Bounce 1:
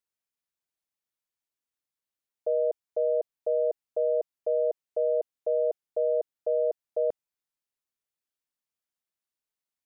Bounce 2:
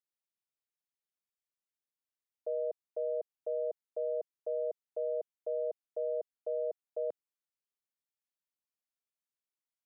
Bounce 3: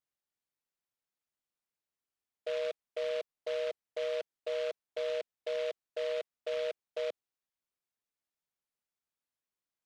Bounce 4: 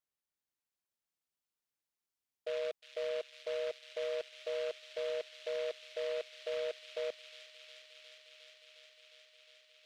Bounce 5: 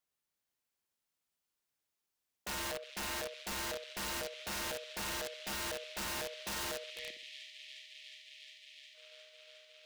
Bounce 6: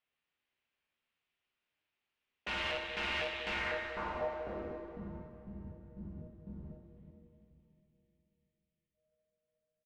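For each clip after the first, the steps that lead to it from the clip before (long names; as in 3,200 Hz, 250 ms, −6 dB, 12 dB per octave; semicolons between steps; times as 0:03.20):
high-pass filter 160 Hz; level −8.5 dB
short delay modulated by noise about 2,300 Hz, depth 0.064 ms
delay with a high-pass on its return 358 ms, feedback 85%, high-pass 2,700 Hz, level −5 dB; level −2.5 dB
gain on a spectral selection 0:06.90–0:08.95, 370–1,700 Hz −20 dB; flutter between parallel walls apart 10.8 metres, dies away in 0.44 s; wrap-around overflow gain 37 dB; level +3.5 dB
low-pass filter sweep 2,700 Hz → 180 Hz, 0:03.49–0:05.12; double-tracking delay 13 ms −13.5 dB; dense smooth reverb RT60 3.2 s, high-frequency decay 0.75×, DRR 3 dB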